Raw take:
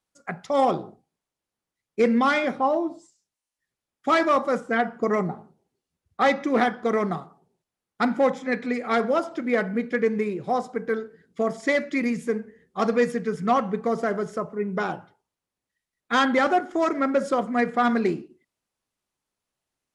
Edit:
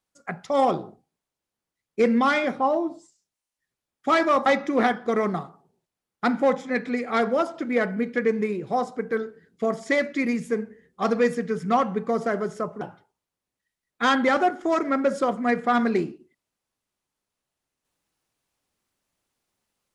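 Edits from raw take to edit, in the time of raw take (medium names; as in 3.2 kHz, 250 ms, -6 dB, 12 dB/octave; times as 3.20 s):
4.46–6.23 s: delete
14.58–14.91 s: delete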